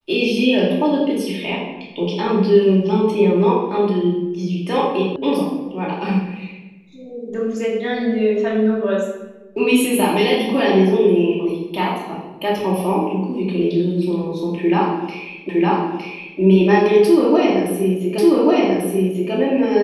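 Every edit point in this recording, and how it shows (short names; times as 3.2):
5.16 sound cut off
15.49 repeat of the last 0.91 s
18.18 repeat of the last 1.14 s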